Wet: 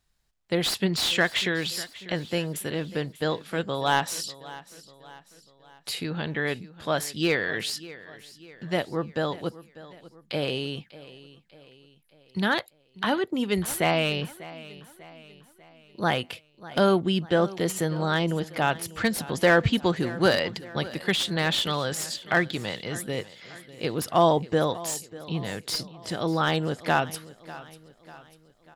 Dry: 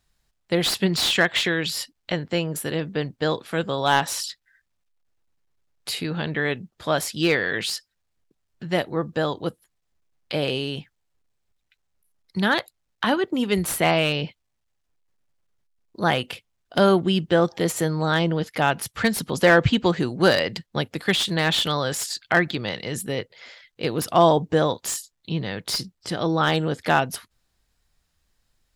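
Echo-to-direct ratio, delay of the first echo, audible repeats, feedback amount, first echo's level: −17.0 dB, 594 ms, 3, 48%, −18.0 dB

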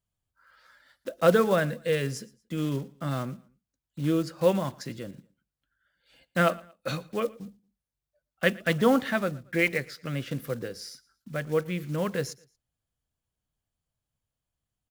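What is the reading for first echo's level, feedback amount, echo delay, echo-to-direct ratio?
−23.0 dB, 34%, 115 ms, −22.5 dB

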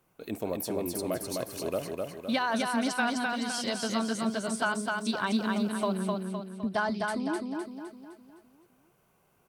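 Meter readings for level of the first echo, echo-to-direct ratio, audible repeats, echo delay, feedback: −3.0 dB, −2.0 dB, 5, 256 ms, 47%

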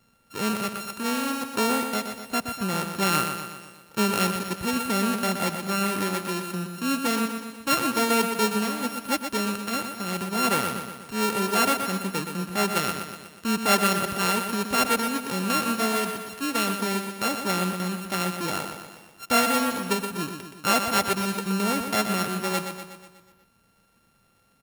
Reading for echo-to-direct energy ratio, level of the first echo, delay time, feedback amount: −6.0 dB, −7.5 dB, 122 ms, 56%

